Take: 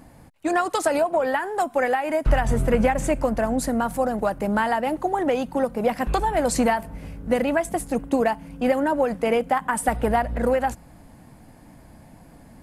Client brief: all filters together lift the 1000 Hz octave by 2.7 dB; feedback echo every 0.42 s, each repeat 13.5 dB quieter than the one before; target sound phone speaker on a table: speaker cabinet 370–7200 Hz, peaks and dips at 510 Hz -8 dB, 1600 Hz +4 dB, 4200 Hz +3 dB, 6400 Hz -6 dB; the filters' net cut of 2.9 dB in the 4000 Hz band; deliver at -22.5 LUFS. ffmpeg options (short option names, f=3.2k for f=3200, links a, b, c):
-af "highpass=f=370:w=0.5412,highpass=f=370:w=1.3066,equalizer=f=510:t=q:w=4:g=-8,equalizer=f=1.6k:t=q:w=4:g=4,equalizer=f=4.2k:t=q:w=4:g=3,equalizer=f=6.4k:t=q:w=4:g=-6,lowpass=f=7.2k:w=0.5412,lowpass=f=7.2k:w=1.3066,equalizer=f=1k:t=o:g=4.5,equalizer=f=4k:t=o:g=-5.5,aecho=1:1:420|840:0.211|0.0444,volume=1.5dB"